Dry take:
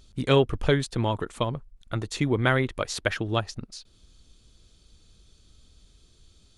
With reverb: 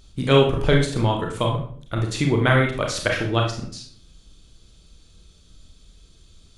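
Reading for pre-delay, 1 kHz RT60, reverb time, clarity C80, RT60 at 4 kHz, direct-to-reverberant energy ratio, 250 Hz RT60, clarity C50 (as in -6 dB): 28 ms, 0.50 s, 0.55 s, 11.0 dB, 0.40 s, 0.5 dB, 0.65 s, 5.5 dB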